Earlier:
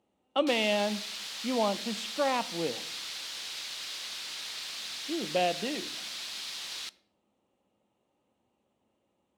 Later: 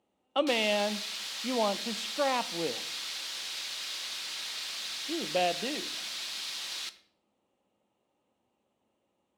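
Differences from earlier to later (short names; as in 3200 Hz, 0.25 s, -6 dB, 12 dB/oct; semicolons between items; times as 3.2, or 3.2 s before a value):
background: send +9.0 dB; master: add low shelf 240 Hz -4.5 dB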